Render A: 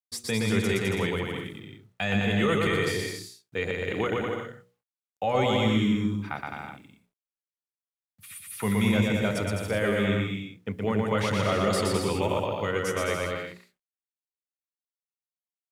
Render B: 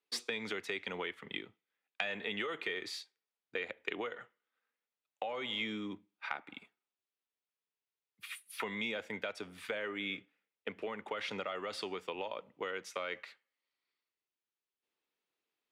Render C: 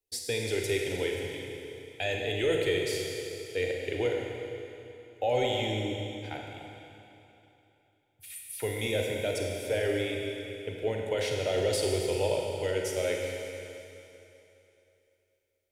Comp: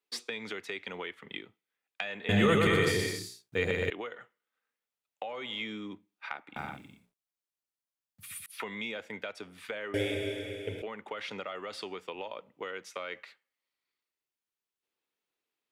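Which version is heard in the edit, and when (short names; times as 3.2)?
B
2.29–3.9 from A
6.56–8.46 from A
9.94–10.82 from C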